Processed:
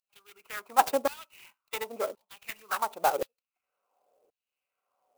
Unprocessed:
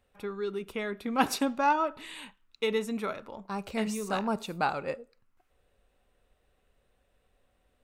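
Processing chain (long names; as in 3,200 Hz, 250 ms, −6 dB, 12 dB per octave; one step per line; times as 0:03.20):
adaptive Wiener filter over 25 samples
in parallel at −3 dB: downward compressor, threshold −38 dBFS, peak gain reduction 18 dB
on the sum: phase-vocoder stretch with locked phases 0.66×
auto-filter high-pass saw down 0.93 Hz 400–4,900 Hz
converter with an unsteady clock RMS 0.041 ms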